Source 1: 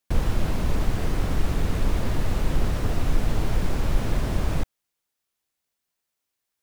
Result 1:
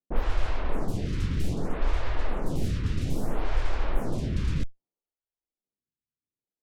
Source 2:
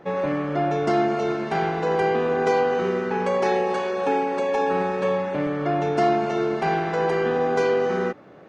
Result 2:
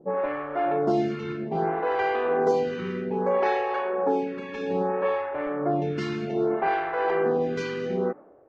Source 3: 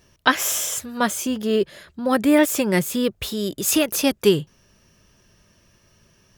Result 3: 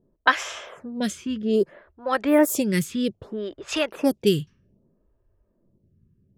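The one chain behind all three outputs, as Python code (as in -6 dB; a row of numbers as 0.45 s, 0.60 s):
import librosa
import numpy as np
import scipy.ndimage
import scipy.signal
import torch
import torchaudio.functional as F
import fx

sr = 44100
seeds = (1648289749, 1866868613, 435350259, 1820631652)

y = fx.env_lowpass(x, sr, base_hz=370.0, full_db=-14.5)
y = fx.stagger_phaser(y, sr, hz=0.62)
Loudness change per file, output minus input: -4.0 LU, -3.5 LU, -3.5 LU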